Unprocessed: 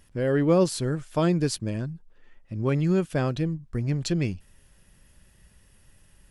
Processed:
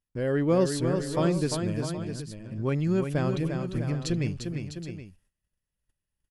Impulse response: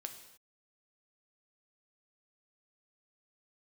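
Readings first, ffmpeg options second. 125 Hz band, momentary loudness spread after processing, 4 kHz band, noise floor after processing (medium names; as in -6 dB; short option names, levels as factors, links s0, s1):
-1.5 dB, 13 LU, -1.5 dB, under -85 dBFS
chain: -af "agate=range=0.0398:threshold=0.00398:ratio=16:detection=peak,aecho=1:1:349|653|772:0.501|0.316|0.2,volume=0.708"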